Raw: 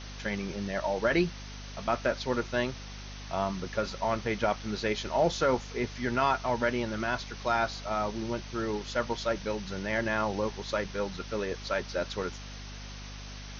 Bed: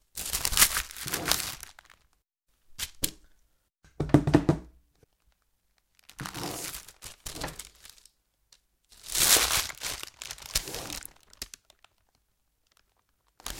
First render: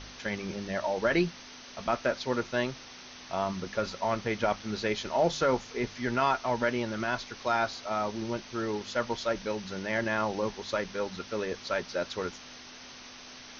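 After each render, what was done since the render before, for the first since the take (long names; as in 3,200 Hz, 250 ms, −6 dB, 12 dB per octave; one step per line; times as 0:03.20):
hum removal 50 Hz, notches 4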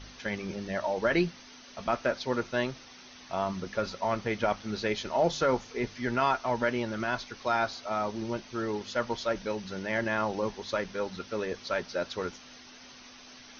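broadband denoise 6 dB, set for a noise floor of −48 dBFS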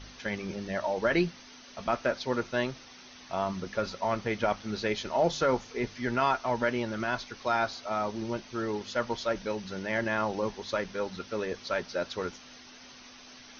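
no processing that can be heard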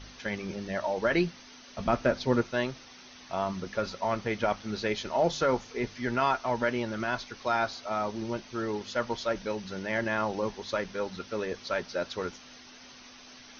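0:01.77–0:02.42: low-shelf EQ 330 Hz +10.5 dB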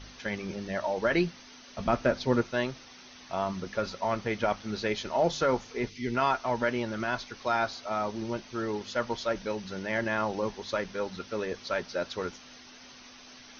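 0:05.89–0:06.15: gain on a spectral selection 480–1,900 Hz −14 dB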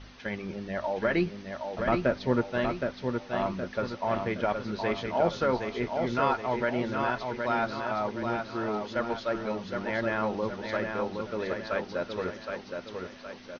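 high-frequency loss of the air 160 metres
on a send: repeating echo 768 ms, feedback 46%, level −5 dB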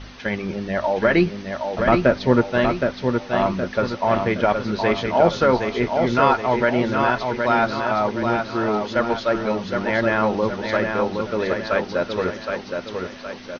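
level +9.5 dB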